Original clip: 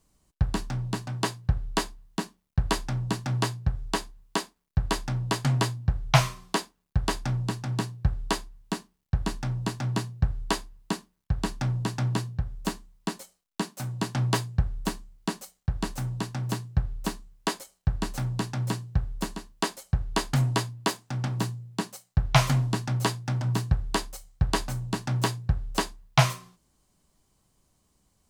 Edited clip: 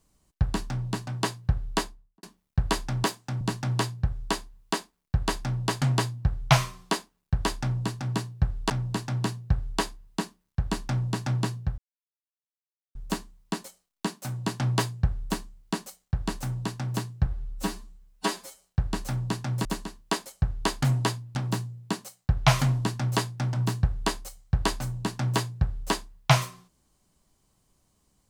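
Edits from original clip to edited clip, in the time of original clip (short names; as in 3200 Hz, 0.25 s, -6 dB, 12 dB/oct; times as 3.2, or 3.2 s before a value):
1.76–2.23 studio fade out
8.33–9.42 cut
12.5 insert silence 1.17 s
16.81–17.73 stretch 1.5×
18.74–19.16 cut
20.86–21.23 move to 3.04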